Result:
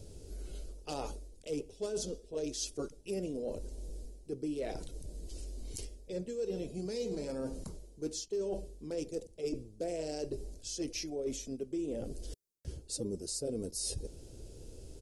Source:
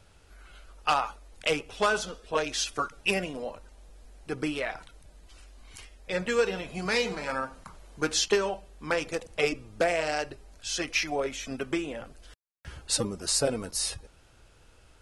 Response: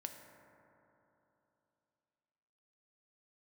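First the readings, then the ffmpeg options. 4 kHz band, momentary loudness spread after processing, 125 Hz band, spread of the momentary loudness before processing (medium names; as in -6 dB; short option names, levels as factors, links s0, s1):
-13.0 dB, 12 LU, -3.5 dB, 13 LU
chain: -af "firequalizer=gain_entry='entry(190,0);entry(400,5);entry(750,-13);entry(1200,-25);entry(4800,-4);entry(6900,-2)':delay=0.05:min_phase=1,areverse,acompressor=threshold=0.00562:ratio=6,areverse,volume=2.82"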